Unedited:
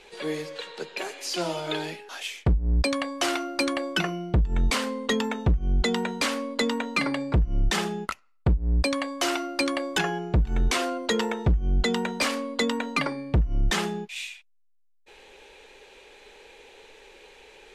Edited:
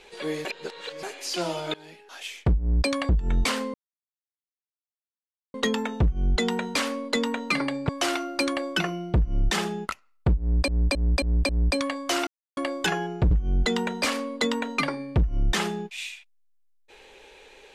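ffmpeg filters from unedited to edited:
-filter_complex "[0:a]asplit=15[a][b][c][d][e][f][g][h][i][j][k][l][m][n][o];[a]atrim=end=0.452[p];[b]atrim=start=0.448:end=1.032,asetpts=PTS-STARTPTS,areverse[q];[c]atrim=start=1.028:end=1.74,asetpts=PTS-STARTPTS,afade=t=out:st=0.708:d=0.004:c=hsin:silence=0.0668344[r];[d]atrim=start=1.74:end=3.092,asetpts=PTS-STARTPTS,afade=t=in:d=0.74:silence=0.0668344[s];[e]atrim=start=4.348:end=5,asetpts=PTS-STARTPTS,afade=t=out:st=0.648:d=0.004:c=hsin,apad=pad_dur=1.8[t];[f]atrim=start=5:end=7.352,asetpts=PTS-STARTPTS,afade=t=in:d=0.004:c=hsin[u];[g]atrim=start=3.088:end=4.352[v];[h]atrim=start=7.348:end=8.882[w];[i]atrim=start=8.608:end=8.882[x];[j]atrim=start=8.608:end=8.882[y];[k]atrim=start=8.608:end=8.882[z];[l]atrim=start=8.608:end=9.39,asetpts=PTS-STARTPTS,afade=t=out:st=0.778:d=0.004:c=hsin[aa];[m]atrim=start=9.39:end=9.69,asetpts=PTS-STARTPTS,volume=0[ab];[n]atrim=start=9.69:end=10.432,asetpts=PTS-STARTPTS,afade=t=in:d=0.004:c=hsin[ac];[o]atrim=start=11.488[ad];[p][q]acrossfade=d=0.004:c1=hsin:c2=hsin[ae];[r][s]concat=n=2:v=0:a=1[af];[ae][af]acrossfade=d=0.004:c1=hsin:c2=hsin[ag];[t][u]concat=n=2:v=0:a=1[ah];[ag][ah]acrossfade=d=0.004:c1=hsin:c2=hsin[ai];[ai][v]acrossfade=d=0.004:c1=hsin:c2=hsin[aj];[aj][w]acrossfade=d=0.004:c1=hsin:c2=hsin[ak];[ak][x]acrossfade=d=0.004:c1=hsin:c2=hsin[al];[al][y]acrossfade=d=0.004:c1=hsin:c2=hsin[am];[am][z]acrossfade=d=0.004:c1=hsin:c2=hsin[an];[aa][ab][ac]concat=n=3:v=0:a=1[ao];[an][ao]acrossfade=d=0.004:c1=hsin:c2=hsin[ap];[ap][ad]acrossfade=d=0.004:c1=hsin:c2=hsin"

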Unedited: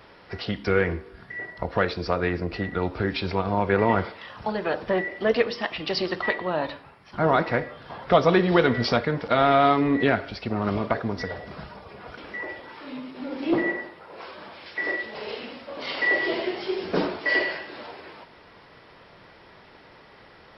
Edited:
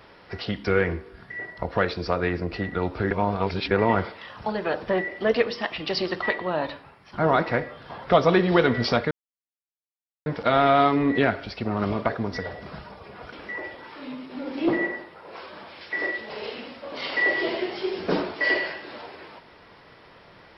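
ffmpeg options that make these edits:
-filter_complex "[0:a]asplit=4[a][b][c][d];[a]atrim=end=3.112[e];[b]atrim=start=3.108:end=3.712,asetpts=PTS-STARTPTS,areverse[f];[c]atrim=start=3.708:end=9.11,asetpts=PTS-STARTPTS,afade=t=out:st=5.398:d=0.004:c=hsin,apad=pad_dur=1.15[g];[d]atrim=start=9.11,asetpts=PTS-STARTPTS,afade=t=in:d=0.004:c=hsin[h];[e][f]acrossfade=d=0.004:c1=hsin:c2=hsin[i];[g][h]concat=n=2:v=0:a=1[j];[i][j]acrossfade=d=0.004:c1=hsin:c2=hsin"

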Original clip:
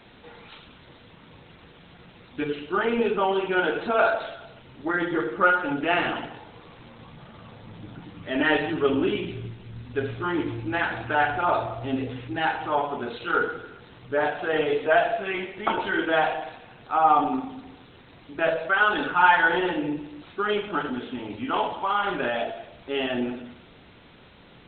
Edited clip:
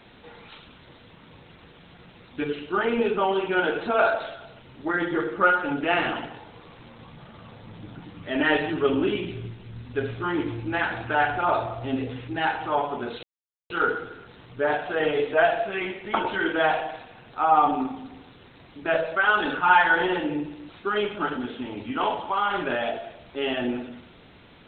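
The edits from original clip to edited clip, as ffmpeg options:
-filter_complex "[0:a]asplit=2[a][b];[a]atrim=end=13.23,asetpts=PTS-STARTPTS,afade=t=out:st=13.226:d=0.004:c=hsin,apad=pad_dur=0.47[c];[b]atrim=start=13.23,asetpts=PTS-STARTPTS,afade=t=in:d=0.004:c=hsin[d];[c][d]concat=n=2:v=0:a=1"

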